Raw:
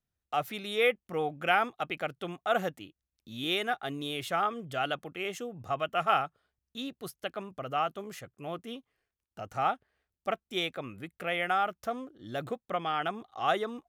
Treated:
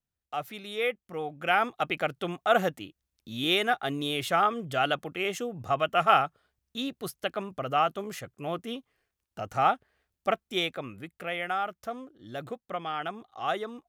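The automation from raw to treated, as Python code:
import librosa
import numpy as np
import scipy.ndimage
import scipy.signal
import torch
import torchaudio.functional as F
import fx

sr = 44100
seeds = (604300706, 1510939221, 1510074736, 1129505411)

y = fx.gain(x, sr, db=fx.line((1.27, -3.0), (1.79, 5.0), (10.3, 5.0), (11.41, -2.0)))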